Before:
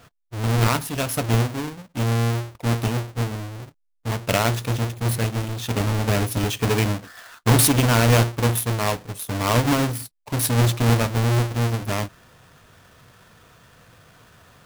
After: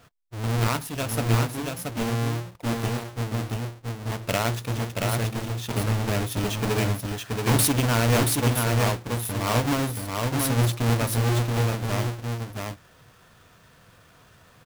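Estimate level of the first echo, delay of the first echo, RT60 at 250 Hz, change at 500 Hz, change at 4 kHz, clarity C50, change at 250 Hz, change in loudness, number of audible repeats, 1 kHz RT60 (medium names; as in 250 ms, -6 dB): -3.5 dB, 678 ms, no reverb, -3.0 dB, -3.0 dB, no reverb, -3.0 dB, -3.5 dB, 1, no reverb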